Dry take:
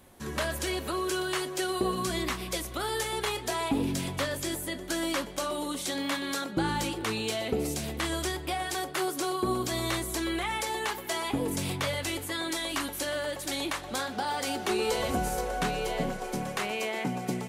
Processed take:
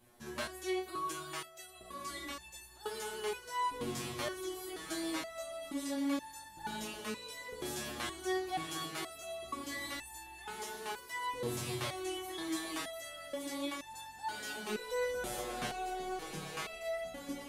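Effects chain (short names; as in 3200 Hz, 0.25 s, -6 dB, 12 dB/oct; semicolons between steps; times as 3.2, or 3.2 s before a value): diffused feedback echo 1.85 s, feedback 40%, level -6 dB; stepped resonator 2.1 Hz 120–880 Hz; gain +3 dB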